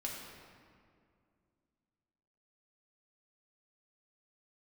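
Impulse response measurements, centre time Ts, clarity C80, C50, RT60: 87 ms, 3.0 dB, 1.5 dB, 2.3 s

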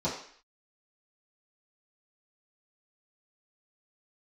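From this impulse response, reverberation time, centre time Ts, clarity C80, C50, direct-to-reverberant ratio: 0.55 s, 35 ms, 9.0 dB, 5.5 dB, -11.0 dB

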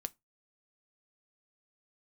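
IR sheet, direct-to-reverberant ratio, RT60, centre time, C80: 11.0 dB, 0.20 s, 2 ms, 38.0 dB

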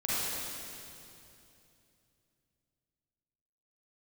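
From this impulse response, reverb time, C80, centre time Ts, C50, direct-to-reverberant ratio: 2.8 s, -3.5 dB, 201 ms, -7.0 dB, -10.0 dB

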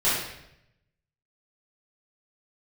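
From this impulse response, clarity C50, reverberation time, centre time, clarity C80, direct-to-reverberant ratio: 0.0 dB, 0.80 s, 67 ms, 4.0 dB, -13.0 dB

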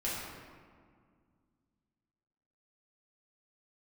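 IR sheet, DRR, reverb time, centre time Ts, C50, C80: -8.0 dB, 2.0 s, 108 ms, -1.5 dB, 1.0 dB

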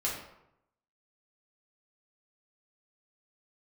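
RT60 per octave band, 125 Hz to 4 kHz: 0.95 s, 0.85 s, 0.80 s, 0.80 s, 0.65 s, 0.50 s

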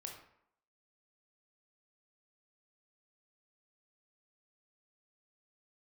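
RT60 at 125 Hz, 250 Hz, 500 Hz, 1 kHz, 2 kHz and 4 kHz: 0.55 s, 0.70 s, 0.70 s, 0.75 s, 0.60 s, 0.45 s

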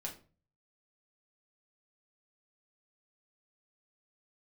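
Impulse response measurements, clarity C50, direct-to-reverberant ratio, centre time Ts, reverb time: 11.0 dB, -1.5 dB, 17 ms, 0.35 s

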